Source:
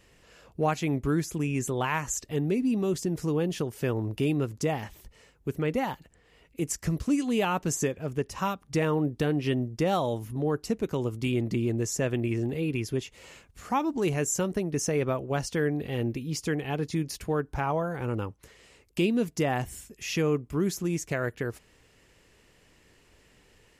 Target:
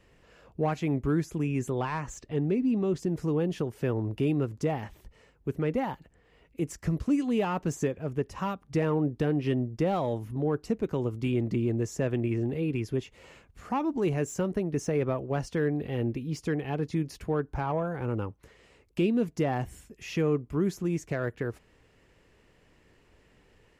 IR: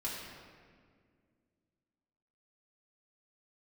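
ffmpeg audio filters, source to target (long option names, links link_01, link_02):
-filter_complex "[0:a]acrossover=split=500[link_01][link_02];[link_02]asoftclip=type=tanh:threshold=-24.5dB[link_03];[link_01][link_03]amix=inputs=2:normalize=0,asettb=1/sr,asplit=3[link_04][link_05][link_06];[link_04]atrim=end=1.824[link_07];[link_05]atrim=start=1.82:end=3,asetpts=PTS-STARTPTS,afade=type=in:duration=0.004:curve=qsin,afade=type=out:start_time=1.176:duration=0.004:curve=qsin,adynamicsmooth=sensitivity=7:basefreq=7200[link_08];[link_06]atrim=start=2.996[link_09];[link_07][link_08]acrossfade=duration=0.004:curve1=hsin:curve2=qsin[link_10];[link_10][link_09]acrossfade=duration=0.004:curve1=qsin:curve2=hsin,highshelf=frequency=3400:gain=-11.5"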